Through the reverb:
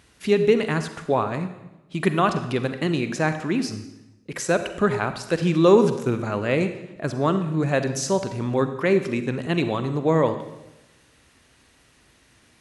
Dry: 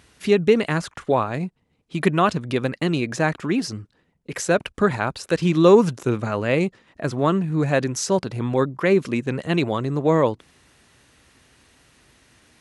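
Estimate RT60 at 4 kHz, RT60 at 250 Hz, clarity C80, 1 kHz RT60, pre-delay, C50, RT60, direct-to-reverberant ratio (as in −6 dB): 0.85 s, 1.1 s, 12.0 dB, 0.95 s, 39 ms, 10.0 dB, 1.0 s, 9.0 dB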